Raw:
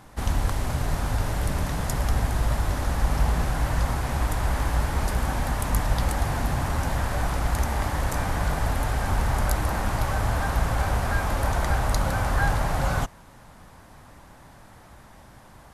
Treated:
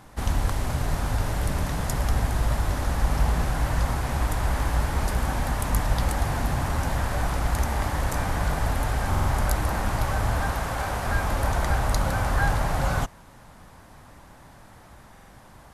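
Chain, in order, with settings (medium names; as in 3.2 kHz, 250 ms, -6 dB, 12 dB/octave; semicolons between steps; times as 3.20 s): 10.52–11.06 s: bass shelf 180 Hz -8 dB; buffer glitch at 9.10/15.12 s, samples 2048, times 3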